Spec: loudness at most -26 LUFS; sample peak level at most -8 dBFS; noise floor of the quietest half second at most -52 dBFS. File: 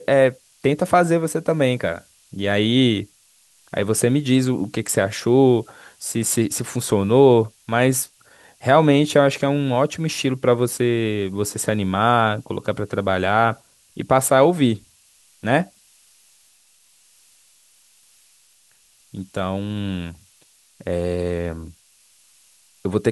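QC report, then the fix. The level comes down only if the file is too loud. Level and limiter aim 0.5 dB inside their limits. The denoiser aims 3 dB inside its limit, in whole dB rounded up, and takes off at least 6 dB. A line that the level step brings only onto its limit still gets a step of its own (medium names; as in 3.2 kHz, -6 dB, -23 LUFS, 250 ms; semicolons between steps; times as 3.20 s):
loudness -20.0 LUFS: fail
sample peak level -1.5 dBFS: fail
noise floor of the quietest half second -57 dBFS: pass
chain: trim -6.5 dB; peak limiter -8.5 dBFS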